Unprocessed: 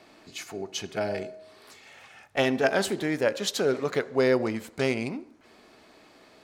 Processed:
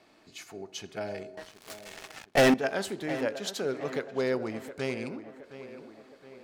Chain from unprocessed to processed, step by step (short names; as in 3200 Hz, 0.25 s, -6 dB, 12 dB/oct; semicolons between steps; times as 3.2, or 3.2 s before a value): 1.37–2.54 sample leveller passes 5; tape echo 0.717 s, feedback 57%, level -12 dB, low-pass 2700 Hz; gain -6.5 dB